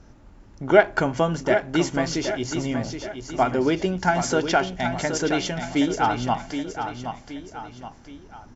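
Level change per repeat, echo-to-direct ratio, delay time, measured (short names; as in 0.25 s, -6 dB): -7.0 dB, -7.0 dB, 0.772 s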